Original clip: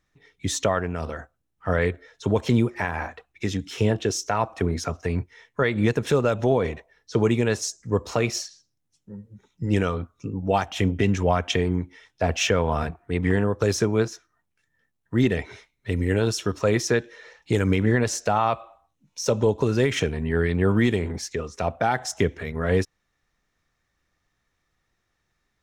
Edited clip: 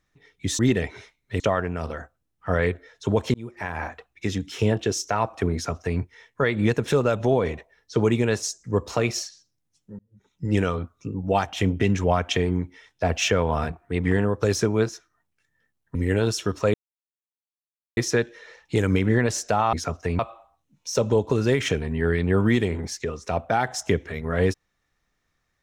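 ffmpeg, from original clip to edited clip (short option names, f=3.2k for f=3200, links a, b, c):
-filter_complex "[0:a]asplit=9[a][b][c][d][e][f][g][h][i];[a]atrim=end=0.592[j];[b]atrim=start=15.138:end=15.952[k];[c]atrim=start=0.588:end=2.53,asetpts=PTS-STARTPTS,afade=t=out:st=1.938:d=0.004:c=hsin[l];[d]atrim=start=2.53:end=9.18,asetpts=PTS-STARTPTS,afade=t=in:d=0.52,afade=t=out:st=6.646:d=0.004:c=hsin[m];[e]atrim=start=9.18:end=15.142,asetpts=PTS-STARTPTS,afade=t=in:d=0.47[n];[f]atrim=start=15.948:end=16.74,asetpts=PTS-STARTPTS,afade=t=out:st=0.788:d=0.004:c=hsin,apad=pad_dur=1.23[o];[g]atrim=start=16.74:end=18.502,asetpts=PTS-STARTPTS,afade=t=in:d=0.004:c=hsin[p];[h]atrim=start=4.728:end=5.192[q];[i]atrim=start=18.498[r];[j][k]acrossfade=d=0.004:c1=hsin:c2=hsin[s];[l][m][n]concat=n=3:v=0:a=1[t];[s][t]acrossfade=d=0.004:c1=hsin:c2=hsin[u];[o][p]concat=n=2:v=0:a=1[v];[u][v]acrossfade=d=0.004:c1=hsin:c2=hsin[w];[w][q]acrossfade=d=0.004:c1=hsin:c2=hsin[x];[x][r]acrossfade=d=0.004:c1=hsin:c2=hsin"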